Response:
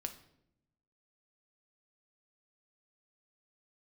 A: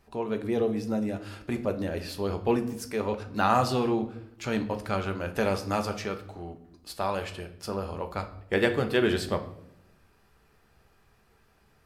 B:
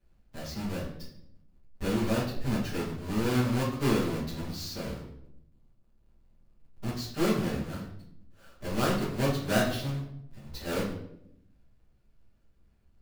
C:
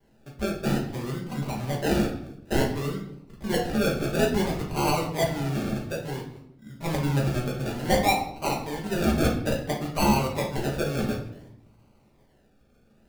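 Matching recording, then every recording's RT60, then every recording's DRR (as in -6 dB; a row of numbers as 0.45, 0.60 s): A; 0.75, 0.75, 0.75 s; 6.0, -11.5, -3.0 dB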